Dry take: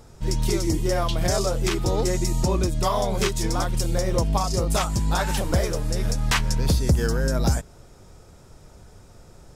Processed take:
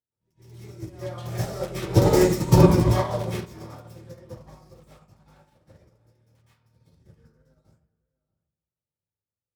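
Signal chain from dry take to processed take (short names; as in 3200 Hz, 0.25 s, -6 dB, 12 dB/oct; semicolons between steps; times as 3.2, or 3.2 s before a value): self-modulated delay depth 0.14 ms; Doppler pass-by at 2.18, 7 m/s, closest 3.3 m; HPF 73 Hz 24 dB/oct; low shelf 470 Hz +3.5 dB; outdoor echo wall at 110 m, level -13 dB; reverb RT60 0.85 s, pre-delay 0.112 s, DRR -11 dB; upward expander 2.5:1, over -33 dBFS; gain -1 dB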